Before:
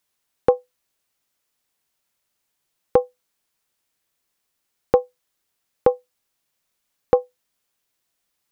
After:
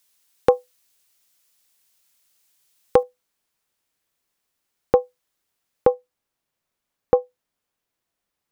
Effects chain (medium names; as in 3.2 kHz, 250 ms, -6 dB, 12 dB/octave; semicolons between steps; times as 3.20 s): treble shelf 2.2 kHz +11.5 dB, from 3.03 s -2 dB, from 5.94 s -8.5 dB